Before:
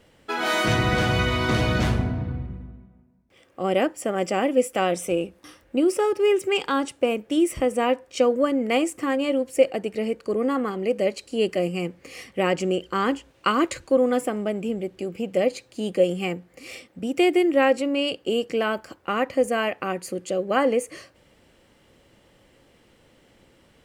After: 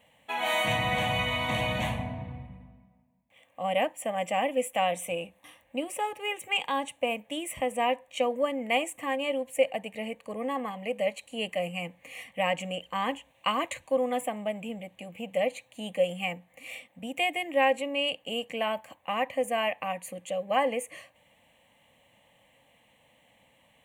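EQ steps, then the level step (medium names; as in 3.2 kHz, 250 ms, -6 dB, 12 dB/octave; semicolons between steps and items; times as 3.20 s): high-pass 310 Hz 6 dB/octave; static phaser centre 1.4 kHz, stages 6; 0.0 dB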